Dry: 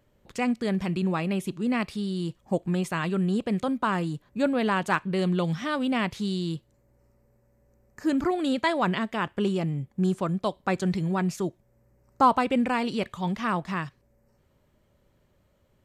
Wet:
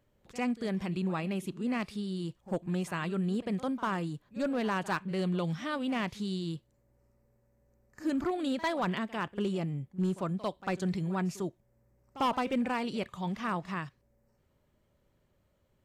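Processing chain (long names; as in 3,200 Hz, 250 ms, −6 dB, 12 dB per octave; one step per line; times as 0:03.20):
hard clipping −18 dBFS, distortion −17 dB
echo ahead of the sound 49 ms −17 dB
level −6 dB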